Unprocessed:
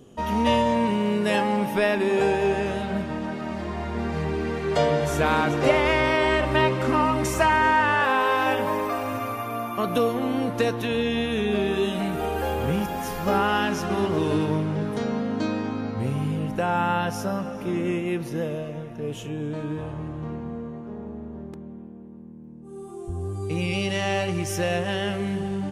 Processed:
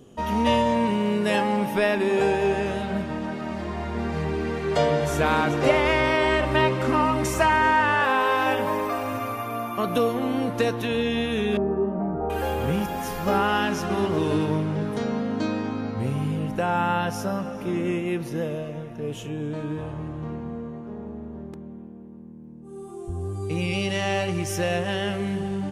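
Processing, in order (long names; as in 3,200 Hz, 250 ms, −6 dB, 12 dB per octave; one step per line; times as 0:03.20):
0:11.57–0:12.30: low-pass filter 1,100 Hz 24 dB per octave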